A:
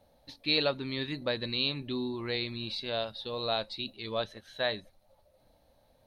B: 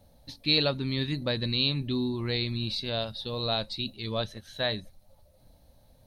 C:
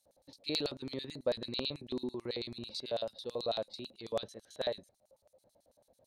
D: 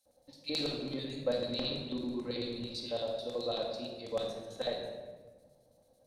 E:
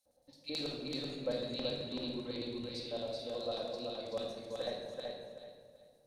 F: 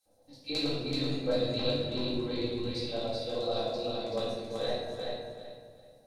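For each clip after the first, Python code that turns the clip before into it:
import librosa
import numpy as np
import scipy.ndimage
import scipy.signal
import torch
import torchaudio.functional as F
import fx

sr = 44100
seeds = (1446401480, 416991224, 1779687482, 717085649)

y1 = fx.bass_treble(x, sr, bass_db=11, treble_db=8)
y2 = fx.filter_lfo_bandpass(y1, sr, shape='square', hz=9.1, low_hz=530.0, high_hz=7700.0, q=1.7)
y2 = y2 * 10.0 ** (1.5 / 20.0)
y3 = fx.room_shoebox(y2, sr, seeds[0], volume_m3=1100.0, walls='mixed', distance_m=2.1)
y3 = y3 * 10.0 ** (-2.5 / 20.0)
y4 = fx.echo_feedback(y3, sr, ms=381, feedback_pct=26, wet_db=-3.5)
y4 = y4 * 10.0 ** (-4.5 / 20.0)
y5 = fx.room_shoebox(y4, sr, seeds[1], volume_m3=350.0, walls='furnished', distance_m=3.7)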